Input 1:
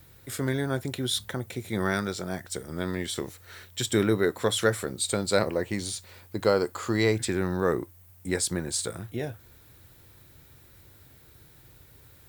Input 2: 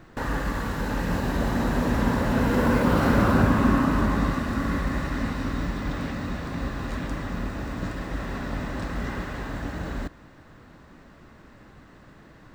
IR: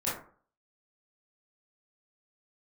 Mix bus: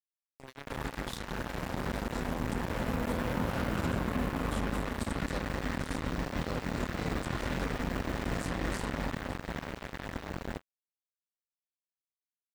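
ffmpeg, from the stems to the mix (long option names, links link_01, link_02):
-filter_complex "[0:a]flanger=delay=2.1:depth=7.7:regen=-85:speed=0.2:shape=triangular,volume=-8.5dB,asplit=2[link_01][link_02];[link_02]volume=-9.5dB[link_03];[1:a]dynaudnorm=framelen=220:gausssize=17:maxgain=13dB,adelay=500,volume=-12dB,afade=type=out:start_time=8.77:duration=0.64:silence=0.334965,asplit=2[link_04][link_05];[link_05]volume=-4.5dB[link_06];[2:a]atrim=start_sample=2205[link_07];[link_03][link_06]amix=inputs=2:normalize=0[link_08];[link_08][link_07]afir=irnorm=-1:irlink=0[link_09];[link_01][link_04][link_09]amix=inputs=3:normalize=0,acrossover=split=140|8000[link_10][link_11][link_12];[link_10]acompressor=threshold=-36dB:ratio=4[link_13];[link_11]acompressor=threshold=-35dB:ratio=4[link_14];[link_12]acompressor=threshold=-59dB:ratio=4[link_15];[link_13][link_14][link_15]amix=inputs=3:normalize=0,equalizer=frequency=1200:width_type=o:width=0.33:gain=-2.5,acrusher=bits=4:mix=0:aa=0.5"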